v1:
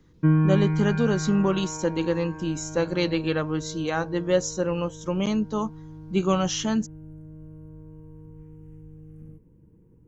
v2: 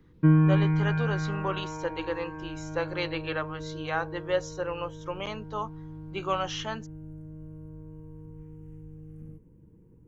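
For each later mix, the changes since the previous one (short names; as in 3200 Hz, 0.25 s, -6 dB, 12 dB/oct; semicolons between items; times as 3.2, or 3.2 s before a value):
speech: add BPF 650–3100 Hz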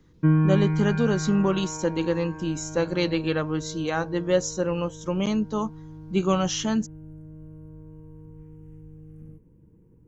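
speech: remove BPF 650–3100 Hz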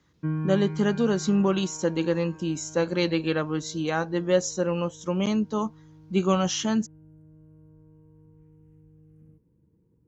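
background -9.0 dB; master: add HPF 55 Hz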